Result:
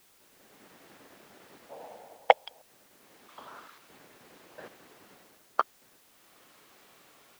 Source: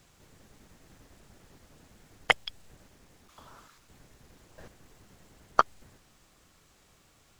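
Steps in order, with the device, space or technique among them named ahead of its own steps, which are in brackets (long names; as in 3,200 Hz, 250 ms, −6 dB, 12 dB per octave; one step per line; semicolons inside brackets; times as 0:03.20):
dictaphone (band-pass filter 300–3,700 Hz; automatic gain control gain up to 12 dB; tape wow and flutter; white noise bed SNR 20 dB)
0:01.69–0:02.62: flat-topped bell 660 Hz +15.5 dB 1.2 octaves
level −5.5 dB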